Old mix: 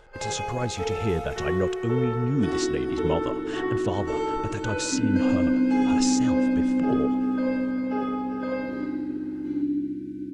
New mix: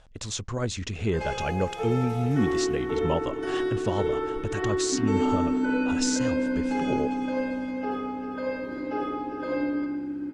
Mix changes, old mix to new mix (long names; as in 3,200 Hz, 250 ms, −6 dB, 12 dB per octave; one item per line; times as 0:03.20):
first sound: entry +1.00 s
second sound: send −11.0 dB